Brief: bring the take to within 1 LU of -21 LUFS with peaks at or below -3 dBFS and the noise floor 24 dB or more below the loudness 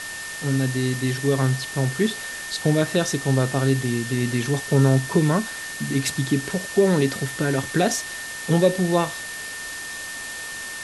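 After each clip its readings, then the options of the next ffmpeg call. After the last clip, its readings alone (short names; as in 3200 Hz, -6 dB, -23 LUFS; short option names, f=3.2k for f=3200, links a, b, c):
steady tone 1800 Hz; tone level -33 dBFS; noise floor -34 dBFS; noise floor target -47 dBFS; loudness -23.0 LUFS; peak -5.5 dBFS; loudness target -21.0 LUFS
-> -af "bandreject=f=1.8k:w=30"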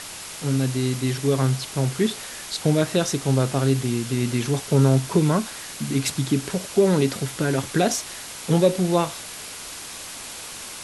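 steady tone none; noise floor -37 dBFS; noise floor target -47 dBFS
-> -af "afftdn=nr=10:nf=-37"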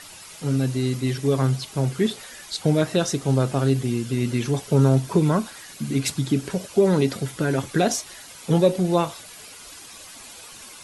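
noise floor -43 dBFS; noise floor target -47 dBFS
-> -af "afftdn=nr=6:nf=-43"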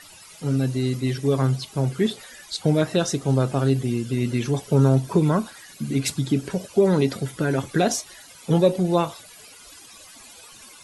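noise floor -46 dBFS; noise floor target -47 dBFS
-> -af "afftdn=nr=6:nf=-46"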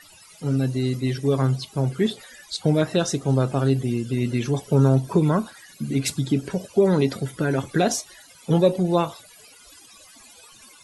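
noise floor -50 dBFS; loudness -23.0 LUFS; peak -6.0 dBFS; loudness target -21.0 LUFS
-> -af "volume=2dB"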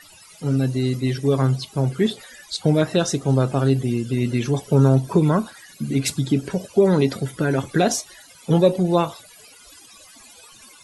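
loudness -21.0 LUFS; peak -4.0 dBFS; noise floor -48 dBFS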